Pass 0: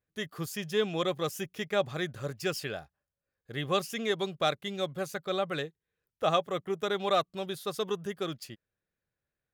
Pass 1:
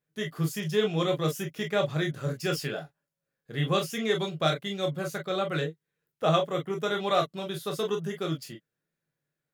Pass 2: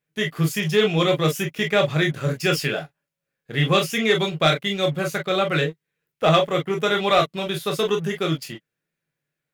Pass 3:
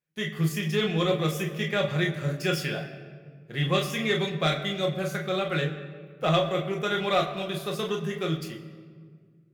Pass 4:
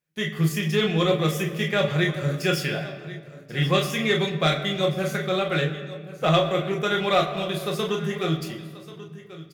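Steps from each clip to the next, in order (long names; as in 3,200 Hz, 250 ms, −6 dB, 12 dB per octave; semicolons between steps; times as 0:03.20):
low shelf with overshoot 110 Hz −9 dB, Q 3; on a send at −2 dB: convolution reverb, pre-delay 7 ms
leveller curve on the samples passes 1; parametric band 2,400 Hz +6.5 dB 0.81 octaves; level +3.5 dB
rectangular room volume 2,700 cubic metres, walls mixed, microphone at 0.94 metres; level −7.5 dB
single-tap delay 1,086 ms −16.5 dB; level +3.5 dB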